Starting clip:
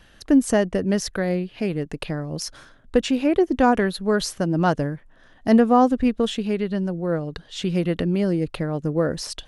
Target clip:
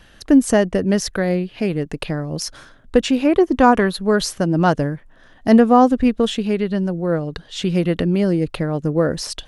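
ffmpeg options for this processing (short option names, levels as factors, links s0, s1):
-filter_complex "[0:a]asettb=1/sr,asplit=3[s0][s1][s2];[s0]atrim=end=3.254[s3];[s1]atrim=start=3.25:end=3.96,asetpts=PTS-STARTPTS,afade=t=in:d=0.004:c=qsin,afade=t=out:st=0.706:d=0.004:c=qsin,equalizer=f=1100:w=3.9:g=6.5[s4];[s2]atrim=start=3.956[s5];[s3][s4]acrossfade=d=0.004:c1=hsin:c2=qsin[s6];[s6][s5]acrossfade=d=0.004:c1=qsin:c2=hsin,volume=1.58"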